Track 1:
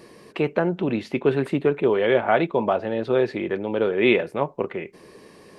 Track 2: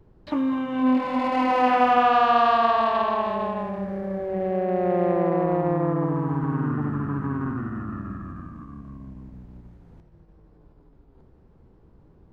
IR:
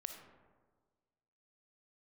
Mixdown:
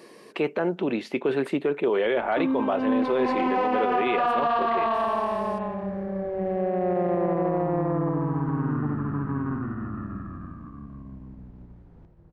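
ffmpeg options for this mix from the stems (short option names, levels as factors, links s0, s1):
-filter_complex "[0:a]highpass=230,volume=0.944[s0];[1:a]lowpass=f=2600:p=1,adelay=2050,volume=0.708,asplit=2[s1][s2];[s2]volume=0.398[s3];[2:a]atrim=start_sample=2205[s4];[s3][s4]afir=irnorm=-1:irlink=0[s5];[s0][s1][s5]amix=inputs=3:normalize=0,alimiter=limit=0.168:level=0:latency=1:release=12"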